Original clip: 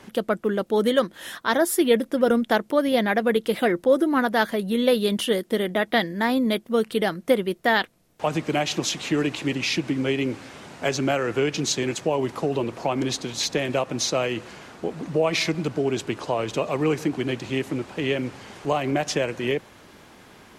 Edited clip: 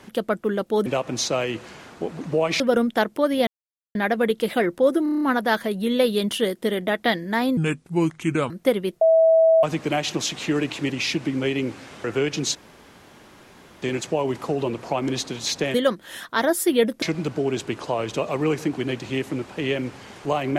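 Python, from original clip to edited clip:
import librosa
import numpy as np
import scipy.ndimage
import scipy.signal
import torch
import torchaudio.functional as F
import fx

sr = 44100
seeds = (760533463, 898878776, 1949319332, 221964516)

y = fx.edit(x, sr, fx.swap(start_s=0.86, length_s=1.28, other_s=13.68, other_length_s=1.74),
    fx.insert_silence(at_s=3.01, length_s=0.48),
    fx.stutter(start_s=4.09, slice_s=0.03, count=7),
    fx.speed_span(start_s=6.45, length_s=0.68, speed=0.73),
    fx.bleep(start_s=7.64, length_s=0.62, hz=650.0, db=-12.0),
    fx.cut(start_s=10.67, length_s=0.58),
    fx.insert_room_tone(at_s=11.76, length_s=1.27), tone=tone)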